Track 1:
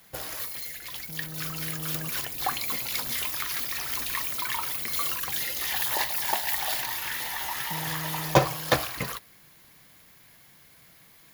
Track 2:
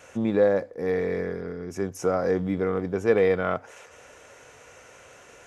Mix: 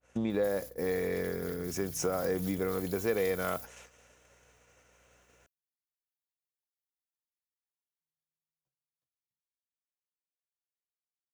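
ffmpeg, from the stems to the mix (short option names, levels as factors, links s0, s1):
-filter_complex "[0:a]bass=f=250:g=13,treble=f=4000:g=14,acompressor=threshold=0.0141:ratio=1.5,adelay=300,volume=0.119[s0];[1:a]acompressor=threshold=0.0355:ratio=2.5,aeval=exprs='val(0)+0.002*(sin(2*PI*60*n/s)+sin(2*PI*2*60*n/s)/2+sin(2*PI*3*60*n/s)/3+sin(2*PI*4*60*n/s)/4+sin(2*PI*5*60*n/s)/5)':c=same,adynamicequalizer=threshold=0.00224:dfrequency=2500:dqfactor=0.7:tfrequency=2500:tqfactor=0.7:attack=5:release=100:ratio=0.375:range=3.5:mode=boostabove:tftype=highshelf,volume=0.841,asplit=2[s1][s2];[s2]apad=whole_len=512977[s3];[s0][s3]sidechaingate=range=0.0708:threshold=0.00891:ratio=16:detection=peak[s4];[s4][s1]amix=inputs=2:normalize=0,agate=range=0.0224:threshold=0.0112:ratio=3:detection=peak"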